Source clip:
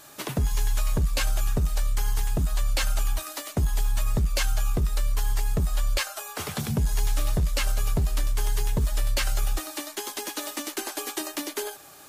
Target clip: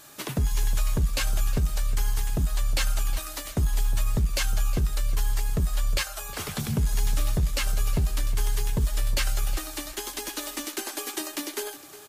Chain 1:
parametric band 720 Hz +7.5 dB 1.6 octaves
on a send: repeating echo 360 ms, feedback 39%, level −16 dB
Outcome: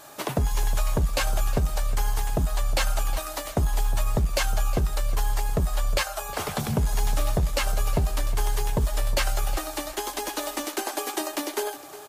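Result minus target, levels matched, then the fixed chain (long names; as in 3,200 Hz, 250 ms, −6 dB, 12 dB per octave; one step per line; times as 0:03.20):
1,000 Hz band +7.0 dB
parametric band 720 Hz −3 dB 1.6 octaves
on a send: repeating echo 360 ms, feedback 39%, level −16 dB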